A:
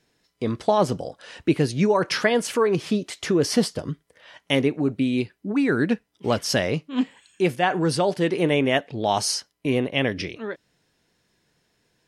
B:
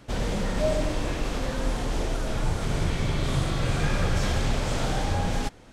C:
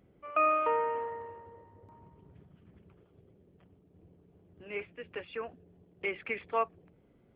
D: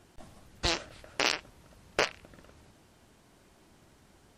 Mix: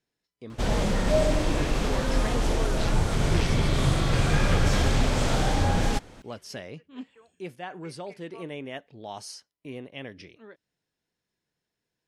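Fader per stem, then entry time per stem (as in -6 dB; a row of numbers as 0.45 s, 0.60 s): -16.5 dB, +2.5 dB, -18.5 dB, -10.5 dB; 0.00 s, 0.50 s, 1.80 s, 2.15 s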